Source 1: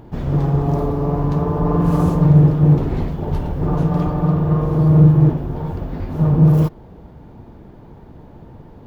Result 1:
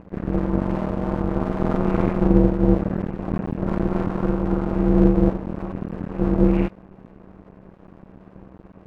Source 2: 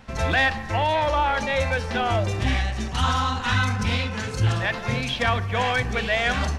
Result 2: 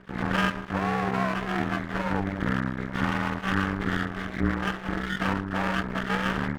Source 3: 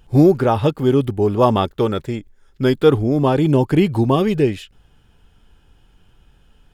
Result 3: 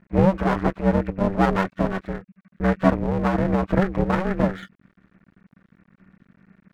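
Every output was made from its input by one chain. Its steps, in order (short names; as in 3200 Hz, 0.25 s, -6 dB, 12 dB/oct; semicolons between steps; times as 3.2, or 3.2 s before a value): nonlinear frequency compression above 1300 Hz 4:1; half-wave rectifier; ring modulator 190 Hz; gain +1 dB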